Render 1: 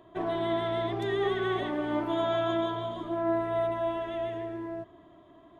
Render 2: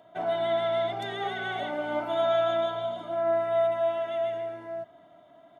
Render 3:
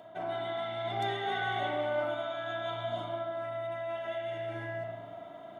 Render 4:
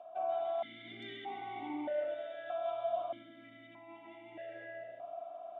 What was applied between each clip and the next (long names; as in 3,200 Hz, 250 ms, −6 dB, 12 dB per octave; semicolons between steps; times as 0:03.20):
high-pass filter 210 Hz 12 dB per octave; comb filter 1.4 ms, depth 79%
reversed playback; downward compressor 10 to 1, threshold −37 dBFS, peak gain reduction 15.5 dB; reversed playback; spring reverb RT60 1.7 s, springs 35/44 ms, chirp 25 ms, DRR 0 dB; level +5 dB
formant filter that steps through the vowels 1.6 Hz; level +4.5 dB